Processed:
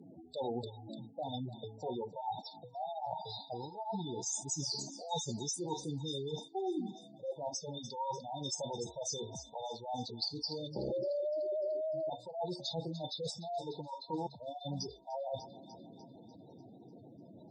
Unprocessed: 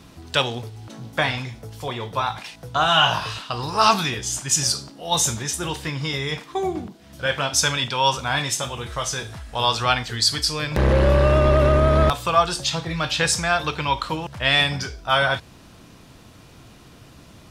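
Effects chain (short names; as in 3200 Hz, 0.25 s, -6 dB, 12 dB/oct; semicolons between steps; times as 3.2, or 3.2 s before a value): HPF 200 Hz 12 dB/oct; spectral gate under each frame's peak -10 dB strong; treble ducked by the level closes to 2100 Hz, closed at -18 dBFS; thin delay 0.297 s, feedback 56%, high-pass 1500 Hz, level -13 dB; reverse; compressor 12:1, threshold -31 dBFS, peak gain reduction 19 dB; reverse; FFT band-reject 950–3500 Hz; gain -2 dB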